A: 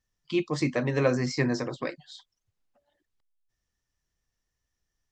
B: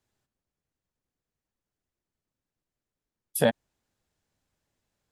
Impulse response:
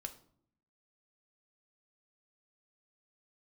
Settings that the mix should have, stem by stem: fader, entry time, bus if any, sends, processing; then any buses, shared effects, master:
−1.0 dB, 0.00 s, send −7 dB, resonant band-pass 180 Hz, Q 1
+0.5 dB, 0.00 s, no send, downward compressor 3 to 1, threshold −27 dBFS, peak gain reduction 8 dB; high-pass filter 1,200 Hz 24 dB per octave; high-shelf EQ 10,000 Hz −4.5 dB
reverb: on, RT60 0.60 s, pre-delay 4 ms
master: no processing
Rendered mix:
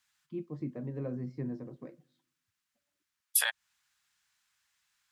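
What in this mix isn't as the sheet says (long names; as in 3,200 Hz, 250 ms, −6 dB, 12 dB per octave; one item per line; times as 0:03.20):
stem A −1.0 dB → −9.5 dB
stem B +0.5 dB → +9.0 dB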